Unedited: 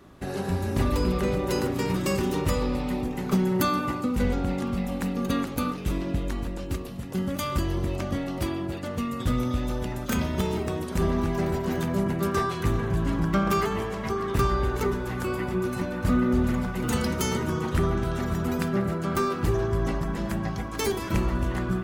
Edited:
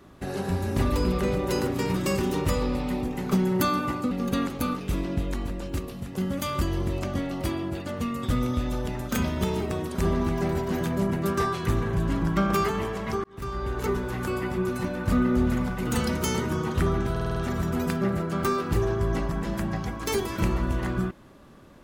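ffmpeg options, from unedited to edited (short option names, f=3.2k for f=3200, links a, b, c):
-filter_complex "[0:a]asplit=8[a][b][c][d][e][f][g][h];[a]atrim=end=4.112[i];[b]atrim=start=5.078:end=14.21,asetpts=PTS-STARTPTS,afade=t=out:st=9.128:d=0.004:c=hsin[j];[c]atrim=start=14.21:end=18.132,asetpts=PTS-STARTPTS,afade=t=in:d=0.72[k];[d]atrim=start=18.078:end=18.132[l];[e]atrim=start=18.078:end=18.132[m];[f]atrim=start=18.078:end=18.132[n];[g]atrim=start=18.078:end=18.132[o];[h]atrim=start=18.078[p];[j][k]concat=n=2:v=0:a=1[q];[i][q]acrossfade=d=0.004:c1=hsin:c2=hsin[r];[r][l]acrossfade=d=0.004:c1=hsin:c2=hsin[s];[s][m]acrossfade=d=0.004:c1=hsin:c2=hsin[t];[t][n]acrossfade=d=0.004:c1=hsin:c2=hsin[u];[u][o]acrossfade=d=0.004:c1=hsin:c2=hsin[v];[v][p]acrossfade=d=0.004:c1=hsin:c2=hsin"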